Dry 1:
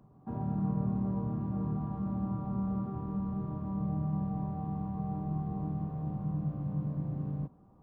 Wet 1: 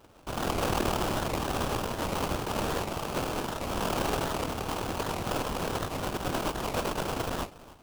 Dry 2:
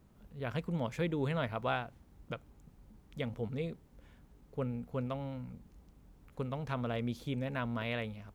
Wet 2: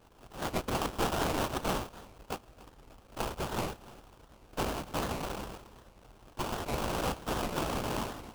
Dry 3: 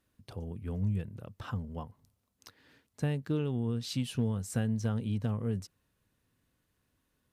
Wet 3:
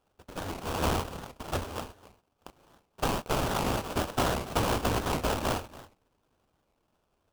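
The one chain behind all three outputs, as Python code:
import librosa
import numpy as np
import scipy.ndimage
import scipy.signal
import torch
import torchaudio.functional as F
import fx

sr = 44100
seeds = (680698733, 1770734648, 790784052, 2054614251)

p1 = fx.bit_reversed(x, sr, seeds[0], block=256)
p2 = fx.sample_hold(p1, sr, seeds[1], rate_hz=2000.0, jitter_pct=20)
p3 = p2 + fx.echo_single(p2, sr, ms=284, db=-18.5, dry=0)
p4 = fx.record_warp(p3, sr, rpm=78.0, depth_cents=250.0)
y = p4 * 10.0 ** (2.5 / 20.0)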